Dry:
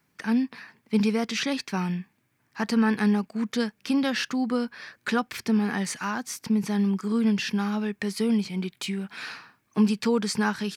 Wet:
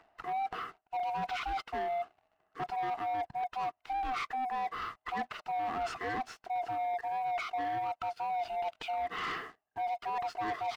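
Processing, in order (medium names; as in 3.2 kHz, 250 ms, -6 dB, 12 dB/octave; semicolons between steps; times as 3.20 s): split-band scrambler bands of 500 Hz; low-pass 2 kHz 12 dB/octave; reverse; compression 10:1, threshold -37 dBFS, peak gain reduction 20.5 dB; reverse; waveshaping leveller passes 2; upward compressor, threshold -54 dBFS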